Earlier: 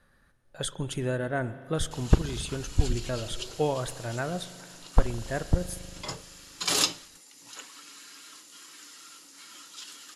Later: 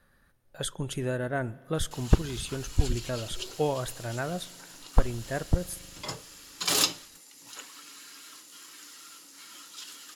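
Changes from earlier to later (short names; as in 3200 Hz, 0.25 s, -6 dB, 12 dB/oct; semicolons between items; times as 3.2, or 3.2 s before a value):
speech: send -8.0 dB; master: remove LPF 11000 Hz 24 dB/oct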